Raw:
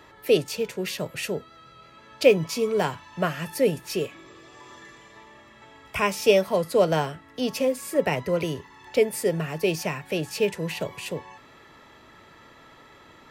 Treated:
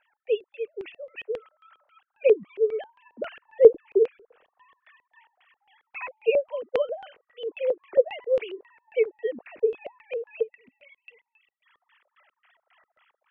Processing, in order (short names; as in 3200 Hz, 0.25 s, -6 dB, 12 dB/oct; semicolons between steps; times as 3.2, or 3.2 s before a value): sine-wave speech; AGC gain up to 8 dB; 3.5–4.77 tilt -4 dB/oct; 10.42–11.66 spectral gain 260–1900 Hz -22 dB; LFO low-pass square 3.7 Hz 480–2700 Hz; gain -10 dB